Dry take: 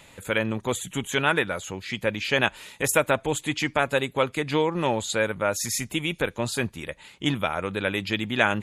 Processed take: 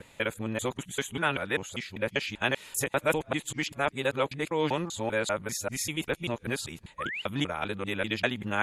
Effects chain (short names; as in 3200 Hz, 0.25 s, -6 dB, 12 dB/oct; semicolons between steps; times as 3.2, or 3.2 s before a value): local time reversal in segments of 0.196 s; painted sound rise, 6.98–7.22, 1000–3100 Hz -30 dBFS; gain -5 dB